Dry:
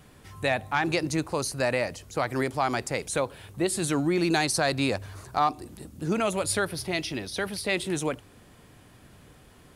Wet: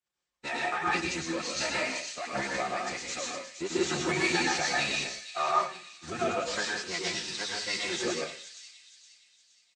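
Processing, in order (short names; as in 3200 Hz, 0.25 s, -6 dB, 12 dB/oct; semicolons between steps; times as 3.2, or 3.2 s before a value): delta modulation 64 kbps, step -36 dBFS; HPF 670 Hz 6 dB/oct; reverb removal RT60 0.61 s; gate -43 dBFS, range -16 dB; comb 2.9 ms, depth 41%; compressor 2.5:1, threshold -32 dBFS, peak gain reduction 8 dB; formant-preserving pitch shift -11.5 st; on a send: thin delay 0.467 s, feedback 63%, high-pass 2900 Hz, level -4.5 dB; on the sum: plate-style reverb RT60 0.61 s, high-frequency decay 1×, pre-delay 90 ms, DRR -2 dB; three-band expander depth 100%; gain +1.5 dB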